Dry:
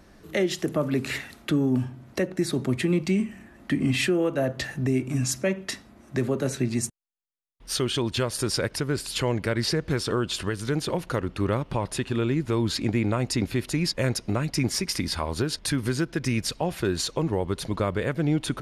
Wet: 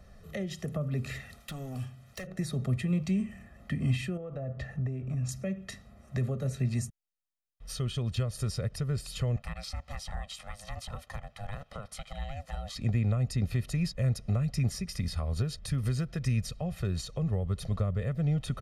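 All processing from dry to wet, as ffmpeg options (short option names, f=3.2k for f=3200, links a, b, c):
-filter_complex "[0:a]asettb=1/sr,asplit=3[a][b][c];[a]atrim=end=1.404[d];[b]atrim=start=1.4:end=2.27,asetpts=PTS-STARTPTS,afade=t=in:d=0.004:c=qsin,afade=t=out:st=0.866:d=0.004:c=qsin,tiltshelf=f=1.3k:g=-7.5,asoftclip=type=hard:threshold=-28dB[e];[c]atrim=start=2.266[f];[d][e]acrossfade=d=0.004:c1=hsin:c2=qsin[g];[g][f]acrossfade=d=0.004:c1=qsin:c2=hsin,asettb=1/sr,asplit=3[h][i][j];[h]atrim=end=4.174[k];[i]atrim=start=4.17:end=5.29,asetpts=PTS-STARTPTS,afade=t=in:d=0.004:c=qsin,afade=t=out:st=1.116:d=0.004:c=qsin,lowpass=f=1.2k:p=1,acompressor=threshold=-26dB:ratio=6:attack=3.2:release=140:knee=1:detection=peak[l];[j]atrim=start=5.286[m];[k][l]acrossfade=d=0.004:c1=hsin:c2=qsin[n];[n][m]acrossfade=d=0.004:c1=qsin:c2=hsin,asettb=1/sr,asplit=3[o][p][q];[o]atrim=end=9.364[r];[p]atrim=start=9.36:end=12.76,asetpts=PTS-STARTPTS,afade=t=in:d=0.004:c=qsin,afade=t=out:st=3.396:d=0.004:c=qsin,highpass=f=820:p=1,aeval=exprs='val(0)*sin(2*PI*410*n/s)':c=same[s];[q]atrim=start=12.756[t];[r][s]acrossfade=d=0.004:c1=hsin:c2=qsin[u];[u][t]acrossfade=d=0.004:c1=qsin:c2=hsin,lowshelf=f=210:g=7.5,aecho=1:1:1.6:0.83,acrossover=split=310[v][w];[w]acompressor=threshold=-33dB:ratio=3[x];[v][x]amix=inputs=2:normalize=0,volume=-8dB"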